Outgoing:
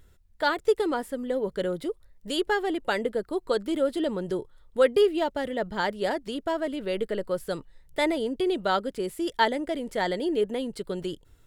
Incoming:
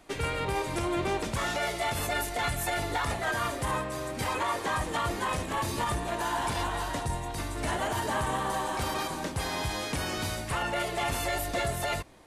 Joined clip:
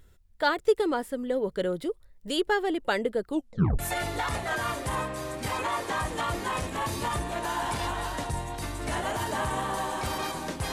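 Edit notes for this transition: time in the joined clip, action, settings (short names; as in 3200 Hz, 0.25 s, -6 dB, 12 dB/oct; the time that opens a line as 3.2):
outgoing
3.29 tape stop 0.50 s
3.79 switch to incoming from 2.55 s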